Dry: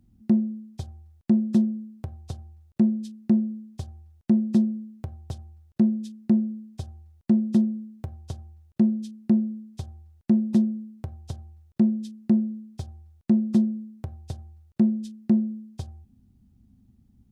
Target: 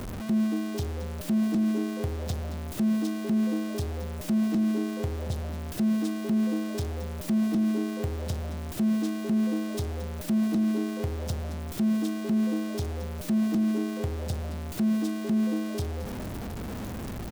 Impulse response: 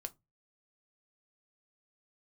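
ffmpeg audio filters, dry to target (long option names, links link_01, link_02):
-filter_complex "[0:a]aeval=exprs='val(0)+0.5*0.0316*sgn(val(0))':channel_layout=same,acontrast=54,asplit=2[link_01][link_02];[link_02]asplit=5[link_03][link_04][link_05][link_06][link_07];[link_03]adelay=223,afreqshift=98,volume=-14dB[link_08];[link_04]adelay=446,afreqshift=196,volume=-19.4dB[link_09];[link_05]adelay=669,afreqshift=294,volume=-24.7dB[link_10];[link_06]adelay=892,afreqshift=392,volume=-30.1dB[link_11];[link_07]adelay=1115,afreqshift=490,volume=-35.4dB[link_12];[link_08][link_09][link_10][link_11][link_12]amix=inputs=5:normalize=0[link_13];[link_01][link_13]amix=inputs=2:normalize=0,alimiter=limit=-14dB:level=0:latency=1:release=16,volume=-6dB"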